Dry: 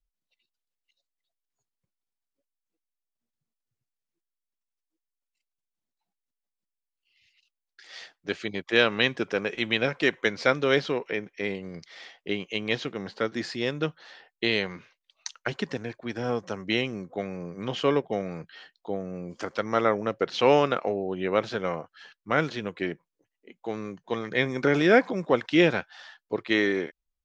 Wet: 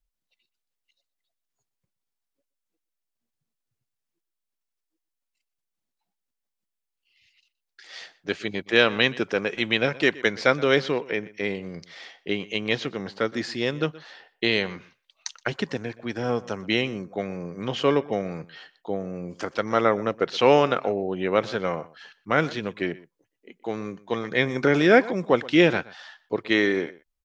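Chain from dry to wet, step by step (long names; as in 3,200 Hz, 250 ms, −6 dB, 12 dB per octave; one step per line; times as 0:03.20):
slap from a distant wall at 21 metres, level −20 dB
level +2.5 dB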